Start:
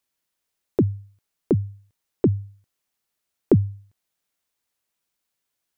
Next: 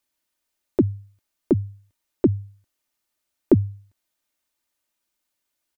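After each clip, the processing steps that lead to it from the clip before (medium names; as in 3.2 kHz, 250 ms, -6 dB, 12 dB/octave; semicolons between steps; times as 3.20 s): comb 3.3 ms, depth 47%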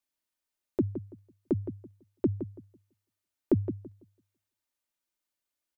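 filtered feedback delay 166 ms, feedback 23%, low-pass 1.6 kHz, level -10 dB; trim -9 dB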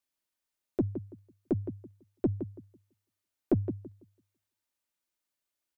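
single-diode clipper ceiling -16.5 dBFS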